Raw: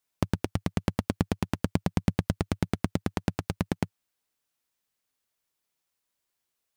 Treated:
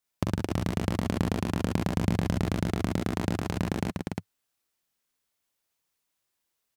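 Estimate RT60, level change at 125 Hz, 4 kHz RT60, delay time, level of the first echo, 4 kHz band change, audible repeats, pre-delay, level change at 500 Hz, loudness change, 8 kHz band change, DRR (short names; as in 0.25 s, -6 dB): none, +1.0 dB, none, 43 ms, -4.5 dB, +2.0 dB, 4, none, +2.0 dB, +1.0 dB, +2.0 dB, none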